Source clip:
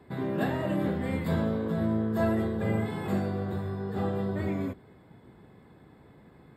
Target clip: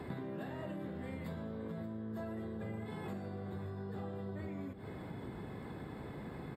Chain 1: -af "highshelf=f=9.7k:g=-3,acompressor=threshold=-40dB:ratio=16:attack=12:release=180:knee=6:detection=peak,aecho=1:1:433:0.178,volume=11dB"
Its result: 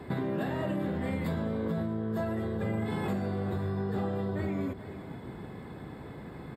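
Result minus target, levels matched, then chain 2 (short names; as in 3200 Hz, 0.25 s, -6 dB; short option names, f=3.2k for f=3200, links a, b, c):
compressor: peak gain reduction -11 dB; echo 0.144 s early
-af "highshelf=f=9.7k:g=-3,acompressor=threshold=-51.5dB:ratio=16:attack=12:release=180:knee=6:detection=peak,aecho=1:1:577:0.178,volume=11dB"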